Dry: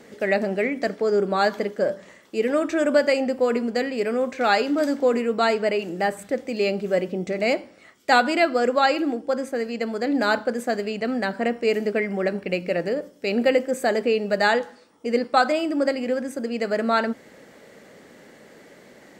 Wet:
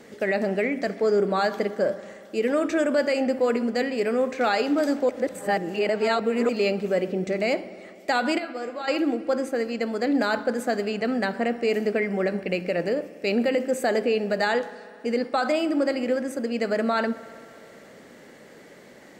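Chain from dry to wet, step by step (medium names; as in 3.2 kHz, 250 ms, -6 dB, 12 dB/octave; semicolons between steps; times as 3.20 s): 5.09–6.49 s: reverse; peak limiter -14 dBFS, peak gain reduction 9.5 dB; 8.38–8.88 s: feedback comb 150 Hz, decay 0.3 s, harmonics all, mix 80%; feedback echo behind a low-pass 64 ms, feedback 84%, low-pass 2.8 kHz, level -20 dB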